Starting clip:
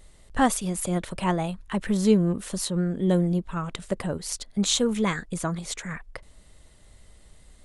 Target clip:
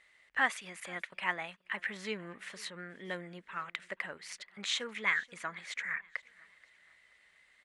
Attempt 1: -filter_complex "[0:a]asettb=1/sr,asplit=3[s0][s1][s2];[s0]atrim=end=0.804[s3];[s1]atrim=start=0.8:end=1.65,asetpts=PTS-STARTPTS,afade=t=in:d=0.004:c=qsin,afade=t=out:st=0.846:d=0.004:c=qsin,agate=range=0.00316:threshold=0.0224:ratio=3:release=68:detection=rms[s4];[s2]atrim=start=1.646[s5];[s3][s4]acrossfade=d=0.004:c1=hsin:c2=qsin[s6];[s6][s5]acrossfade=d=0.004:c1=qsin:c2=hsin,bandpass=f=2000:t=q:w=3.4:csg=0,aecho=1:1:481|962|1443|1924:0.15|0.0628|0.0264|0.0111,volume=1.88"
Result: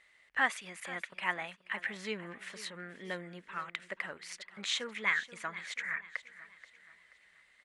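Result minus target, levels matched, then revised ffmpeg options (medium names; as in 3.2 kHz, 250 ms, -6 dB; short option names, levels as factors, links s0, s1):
echo-to-direct +7.5 dB
-filter_complex "[0:a]asettb=1/sr,asplit=3[s0][s1][s2];[s0]atrim=end=0.804[s3];[s1]atrim=start=0.8:end=1.65,asetpts=PTS-STARTPTS,afade=t=in:d=0.004:c=qsin,afade=t=out:st=0.846:d=0.004:c=qsin,agate=range=0.00316:threshold=0.0224:ratio=3:release=68:detection=rms[s4];[s2]atrim=start=1.646[s5];[s3][s4]acrossfade=d=0.004:c1=hsin:c2=qsin[s6];[s6][s5]acrossfade=d=0.004:c1=qsin:c2=hsin,bandpass=f=2000:t=q:w=3.4:csg=0,aecho=1:1:481|962|1443:0.0631|0.0265|0.0111,volume=1.88"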